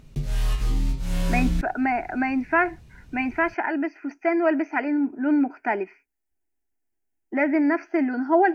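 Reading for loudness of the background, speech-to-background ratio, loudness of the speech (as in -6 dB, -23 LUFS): -27.5 LUFS, 3.0 dB, -24.5 LUFS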